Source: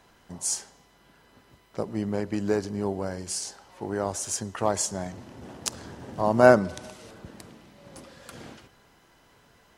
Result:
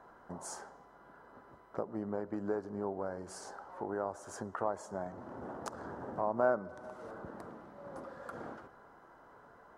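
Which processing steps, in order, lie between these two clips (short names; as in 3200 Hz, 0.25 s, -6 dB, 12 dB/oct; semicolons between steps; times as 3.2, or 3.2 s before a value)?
EQ curve 110 Hz 0 dB, 570 Hz +11 dB, 1400 Hz +12 dB, 2500 Hz -10 dB; compressor 2:1, threshold -34 dBFS, peak gain reduction 18.5 dB; gain -7 dB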